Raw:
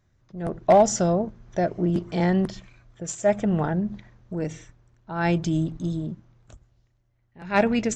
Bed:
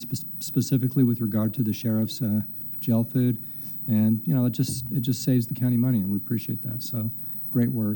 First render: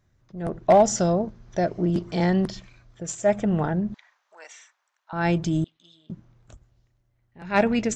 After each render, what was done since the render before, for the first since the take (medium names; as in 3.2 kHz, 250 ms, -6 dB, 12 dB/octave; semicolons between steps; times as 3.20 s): 0.98–3.03 s: peaking EQ 4.8 kHz +5 dB; 3.94–5.13 s: high-pass 860 Hz 24 dB/octave; 5.64–6.10 s: band-pass filter 3.2 kHz, Q 3.5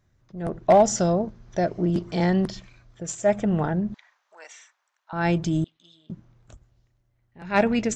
no audible change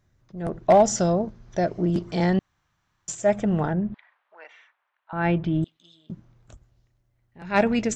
2.39–3.08 s: room tone; 3.73–5.63 s: low-pass 3.1 kHz 24 dB/octave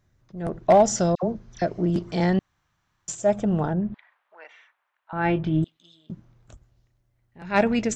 1.15–1.62 s: phase dispersion lows, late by 79 ms, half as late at 1.3 kHz; 3.16–3.80 s: peaking EQ 2 kHz -8 dB 0.66 oct; 5.15–5.63 s: doubling 26 ms -8.5 dB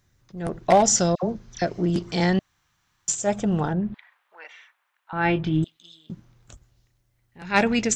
treble shelf 2.1 kHz +9 dB; band-stop 630 Hz, Q 12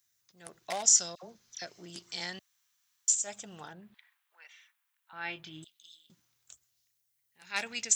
high-pass 67 Hz; pre-emphasis filter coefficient 0.97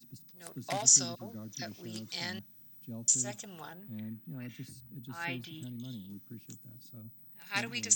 add bed -21 dB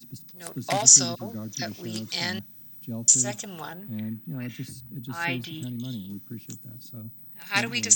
trim +9 dB; peak limiter -2 dBFS, peak gain reduction 1.5 dB